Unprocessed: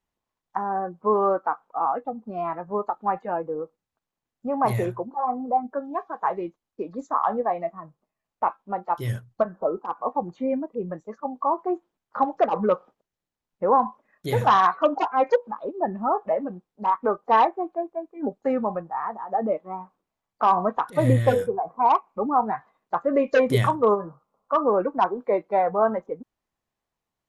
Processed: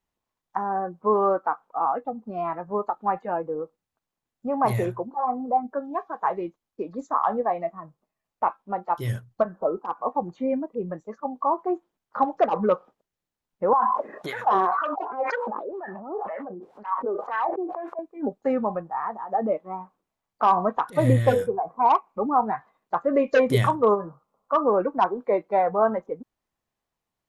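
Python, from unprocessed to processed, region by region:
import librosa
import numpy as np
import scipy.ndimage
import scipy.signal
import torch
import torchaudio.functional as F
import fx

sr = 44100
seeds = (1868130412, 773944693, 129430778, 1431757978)

y = fx.chain(x, sr, fx.high_shelf(hz=4300.0, db=8.5),
    fx.wah_lfo(hz=2.0, low_hz=350.0, high_hz=1600.0, q=3.9),
    fx.sustainer(db_per_s=23.0), at=(13.73, 17.99))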